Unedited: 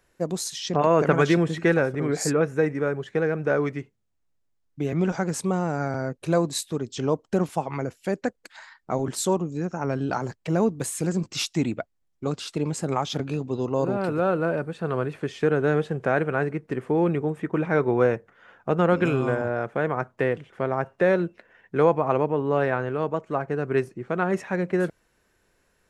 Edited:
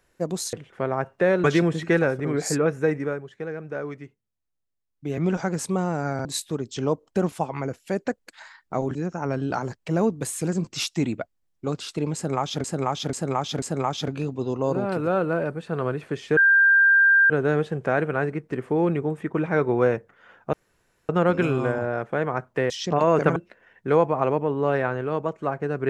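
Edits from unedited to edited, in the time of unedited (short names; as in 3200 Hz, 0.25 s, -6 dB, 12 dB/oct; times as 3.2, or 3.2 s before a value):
0.53–1.19 swap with 20.33–21.24
2.76–4.92 dip -8.5 dB, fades 0.22 s
6–6.46 cut
7.2 stutter 0.02 s, 3 plays
9.12–9.54 cut
12.74–13.23 loop, 4 plays
15.49 add tone 1590 Hz -13 dBFS 0.93 s
18.72 insert room tone 0.56 s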